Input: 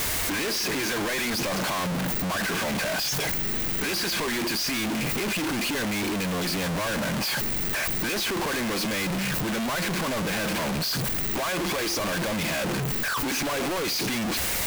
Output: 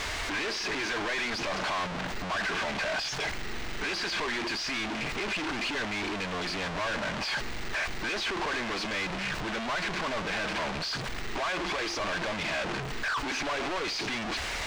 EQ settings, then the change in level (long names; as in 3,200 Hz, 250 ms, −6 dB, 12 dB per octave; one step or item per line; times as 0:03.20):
high-frequency loss of the air 130 metres
parametric band 170 Hz −10.5 dB 2.2 octaves
notch filter 520 Hz, Q 12
0.0 dB